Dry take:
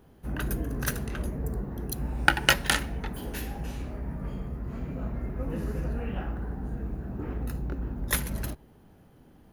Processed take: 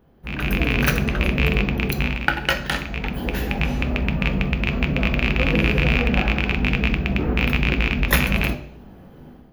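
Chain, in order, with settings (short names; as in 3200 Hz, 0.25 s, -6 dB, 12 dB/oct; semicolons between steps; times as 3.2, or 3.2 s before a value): rattling part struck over -29 dBFS, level -16 dBFS; bell 8800 Hz -13 dB 1.3 oct; AGC gain up to 13.5 dB; on a send: reverb RT60 0.60 s, pre-delay 3 ms, DRR 6 dB; on the sum: gain -1 dB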